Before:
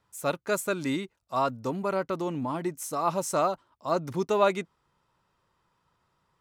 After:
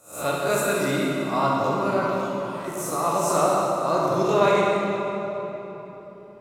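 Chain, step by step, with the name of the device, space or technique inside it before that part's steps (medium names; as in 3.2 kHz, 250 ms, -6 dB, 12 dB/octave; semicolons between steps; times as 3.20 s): reverse spectral sustain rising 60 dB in 0.41 s; 2.07–2.68 s: amplifier tone stack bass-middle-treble 10-0-10; tunnel (flutter echo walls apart 11.1 m, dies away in 0.32 s; reverberation RT60 3.8 s, pre-delay 13 ms, DRR -4 dB)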